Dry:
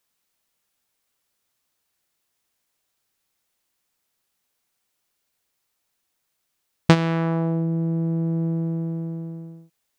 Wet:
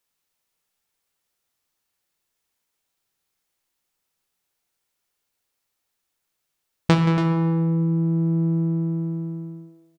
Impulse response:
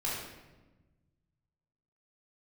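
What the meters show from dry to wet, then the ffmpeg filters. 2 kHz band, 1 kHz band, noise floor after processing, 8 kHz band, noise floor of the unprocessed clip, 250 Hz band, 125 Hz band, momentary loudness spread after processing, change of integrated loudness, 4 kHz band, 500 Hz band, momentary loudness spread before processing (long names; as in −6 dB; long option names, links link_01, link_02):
−2.5 dB, 0.0 dB, −79 dBFS, can't be measured, −76 dBFS, +2.0 dB, +2.0 dB, 12 LU, +1.5 dB, −1.5 dB, −1.5 dB, 14 LU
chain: -filter_complex "[0:a]aecho=1:1:176|282:0.168|0.282,asplit=2[link_01][link_02];[1:a]atrim=start_sample=2205,asetrate=48510,aresample=44100[link_03];[link_02][link_03]afir=irnorm=-1:irlink=0,volume=-9.5dB[link_04];[link_01][link_04]amix=inputs=2:normalize=0,volume=-5dB"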